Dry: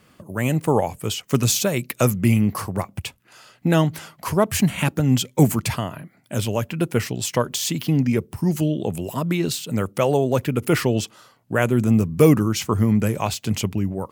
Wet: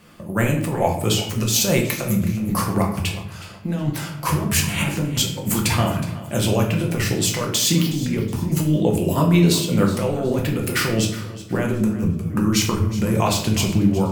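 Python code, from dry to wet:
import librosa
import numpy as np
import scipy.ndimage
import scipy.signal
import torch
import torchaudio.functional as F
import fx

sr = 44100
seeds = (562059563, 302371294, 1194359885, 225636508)

y = fx.over_compress(x, sr, threshold_db=-22.0, ratio=-0.5)
y = fx.echo_feedback(y, sr, ms=368, feedback_pct=31, wet_db=-16.5)
y = fx.room_shoebox(y, sr, seeds[0], volume_m3=130.0, walls='mixed', distance_m=0.85)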